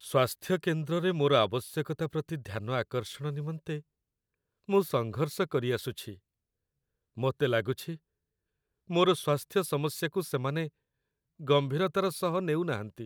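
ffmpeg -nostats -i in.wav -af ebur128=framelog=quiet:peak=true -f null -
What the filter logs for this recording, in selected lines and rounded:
Integrated loudness:
  I:         -30.4 LUFS
  Threshold: -40.9 LUFS
Loudness range:
  LRA:         4.1 LU
  Threshold: -52.1 LUFS
  LRA low:   -34.5 LUFS
  LRA high:  -30.4 LUFS
True peak:
  Peak:      -11.9 dBFS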